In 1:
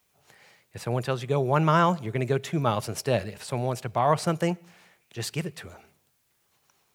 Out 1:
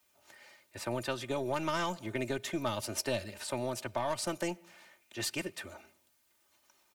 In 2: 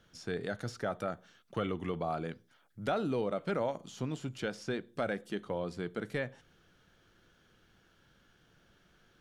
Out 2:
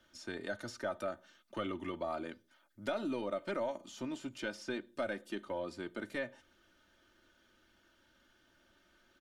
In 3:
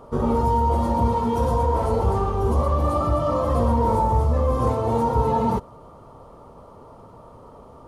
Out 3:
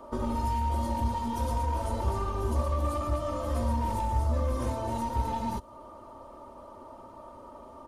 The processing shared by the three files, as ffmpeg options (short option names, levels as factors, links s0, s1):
-filter_complex "[0:a]aeval=exprs='0.422*(cos(1*acos(clip(val(0)/0.422,-1,1)))-cos(1*PI/2))+0.0266*(cos(3*acos(clip(val(0)/0.422,-1,1)))-cos(3*PI/2))+0.00841*(cos(8*acos(clip(val(0)/0.422,-1,1)))-cos(8*PI/2))':c=same,aecho=1:1:3.3:0.74,acrossover=split=170|3000[s0][s1][s2];[s1]acompressor=threshold=0.0316:ratio=6[s3];[s0][s3][s2]amix=inputs=3:normalize=0,lowshelf=f=170:g=-7.5,volume=0.891"